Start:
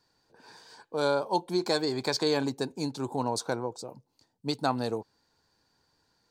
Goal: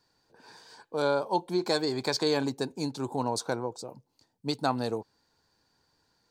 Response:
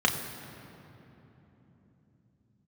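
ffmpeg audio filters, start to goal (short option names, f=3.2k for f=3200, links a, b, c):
-filter_complex "[0:a]asettb=1/sr,asplit=3[a][b][c];[a]atrim=end=1.024[d];[b]atrim=start=1.02:end=1.67,asetpts=PTS-STARTPTS,afade=t=in:d=0.004:c=qsin,afade=t=out:st=0.646:d=0.004:c=qsin,acrossover=split=4200[e][f];[f]acompressor=threshold=-49dB:ratio=4:attack=1:release=60[g];[e][g]amix=inputs=2:normalize=0[h];[c]atrim=start=1.666[i];[d][h]acrossfade=d=0.004:c1=hsin:c2=qsin[j];[j][i]acrossfade=d=0.004:c1=qsin:c2=hsin"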